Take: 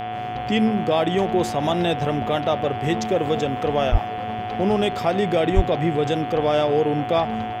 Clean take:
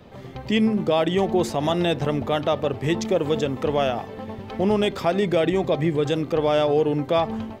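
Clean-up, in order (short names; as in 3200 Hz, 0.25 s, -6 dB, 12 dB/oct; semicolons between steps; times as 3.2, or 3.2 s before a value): de-hum 111.7 Hz, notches 31; notch 730 Hz, Q 30; 3.91–4.03 HPF 140 Hz 24 dB/oct; 5.55–5.67 HPF 140 Hz 24 dB/oct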